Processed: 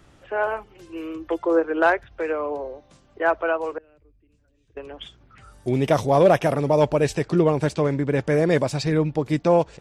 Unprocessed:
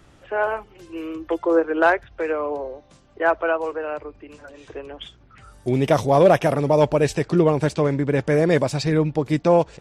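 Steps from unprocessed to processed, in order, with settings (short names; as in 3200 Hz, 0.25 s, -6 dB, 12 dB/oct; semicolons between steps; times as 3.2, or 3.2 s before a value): 3.78–4.77 passive tone stack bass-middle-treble 10-0-1; gain -1.5 dB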